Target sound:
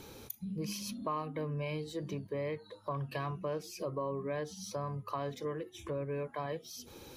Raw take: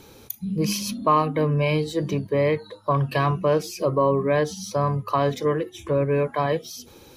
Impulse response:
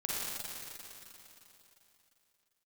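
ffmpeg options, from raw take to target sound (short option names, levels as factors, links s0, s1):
-af "acompressor=threshold=0.00708:ratio=2,volume=0.75"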